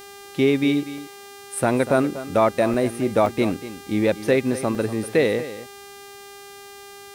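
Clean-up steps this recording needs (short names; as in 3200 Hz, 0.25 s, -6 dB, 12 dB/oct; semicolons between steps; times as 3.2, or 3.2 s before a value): de-hum 400.2 Hz, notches 39; interpolate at 0.98/2.74/3.26/4.75, 1.7 ms; inverse comb 0.241 s -14 dB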